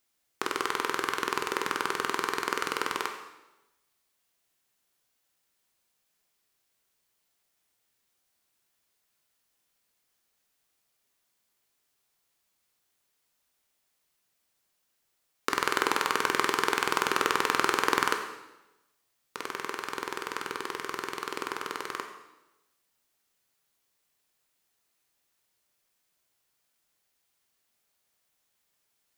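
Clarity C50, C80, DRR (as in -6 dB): 7.5 dB, 9.5 dB, 4.5 dB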